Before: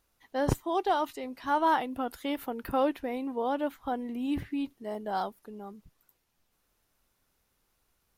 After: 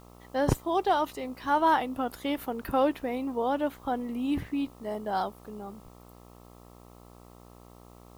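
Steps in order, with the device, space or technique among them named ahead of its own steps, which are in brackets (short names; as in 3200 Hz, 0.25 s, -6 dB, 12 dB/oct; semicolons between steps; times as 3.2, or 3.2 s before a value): video cassette with head-switching buzz (buzz 60 Hz, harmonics 22, -54 dBFS -3 dB/oct; white noise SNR 34 dB); gain +2 dB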